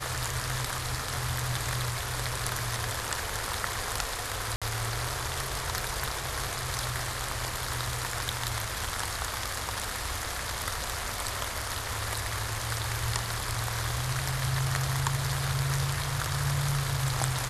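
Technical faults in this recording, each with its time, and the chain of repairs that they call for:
4.56–4.62 gap 56 ms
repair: interpolate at 4.56, 56 ms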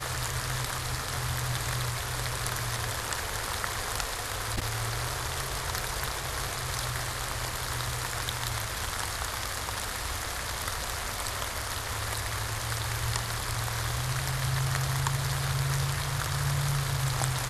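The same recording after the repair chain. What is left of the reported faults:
none

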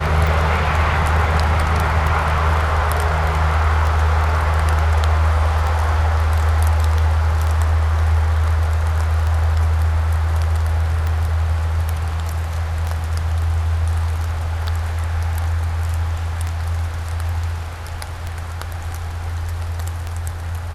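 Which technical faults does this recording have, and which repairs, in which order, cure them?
tick 33 1/3 rpm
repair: de-click

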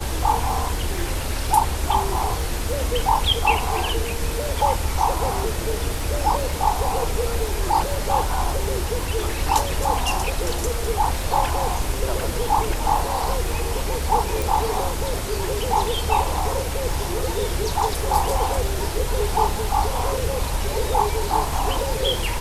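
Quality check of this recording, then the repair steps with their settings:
crackle 24/s -28 dBFS
14.42 pop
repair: de-click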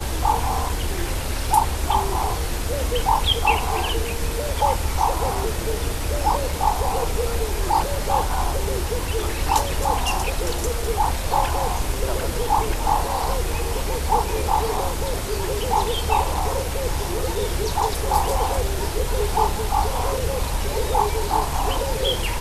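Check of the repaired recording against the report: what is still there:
none

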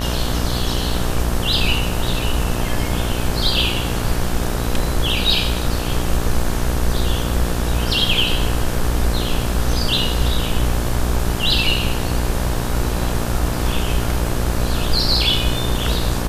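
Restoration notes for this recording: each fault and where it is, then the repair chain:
buzz 60 Hz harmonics 30 -23 dBFS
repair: de-hum 60 Hz, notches 30

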